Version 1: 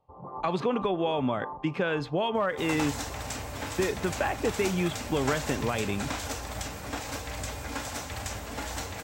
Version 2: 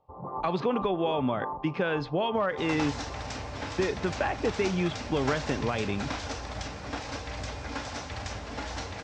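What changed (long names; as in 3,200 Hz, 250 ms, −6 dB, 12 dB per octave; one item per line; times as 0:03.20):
first sound +4.0 dB
master: add Chebyshev low-pass filter 5,500 Hz, order 3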